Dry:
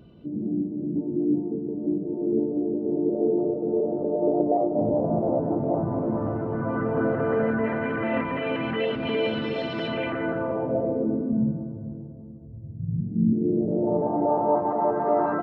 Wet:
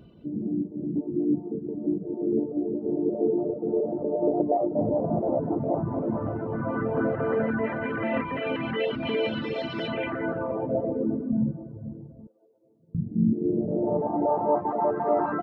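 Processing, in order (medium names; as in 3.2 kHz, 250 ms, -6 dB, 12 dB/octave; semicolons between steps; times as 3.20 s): 12.27–12.95 s: Chebyshev high-pass 420 Hz, order 3; reverb removal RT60 0.72 s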